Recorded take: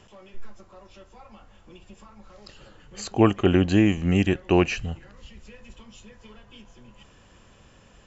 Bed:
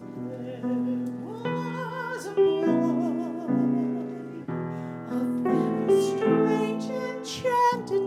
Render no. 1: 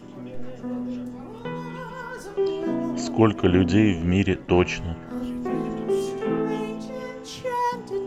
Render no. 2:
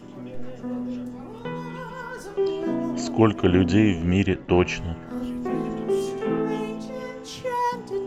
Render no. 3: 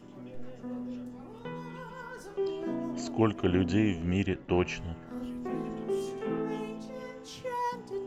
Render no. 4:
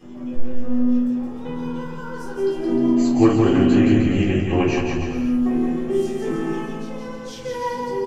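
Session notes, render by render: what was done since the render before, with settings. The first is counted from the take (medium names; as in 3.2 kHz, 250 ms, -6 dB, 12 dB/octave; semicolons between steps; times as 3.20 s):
add bed -3 dB
4.26–4.68 s: distance through air 84 m
trim -8 dB
bouncing-ball echo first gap 170 ms, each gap 0.8×, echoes 5; simulated room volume 220 m³, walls furnished, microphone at 3.8 m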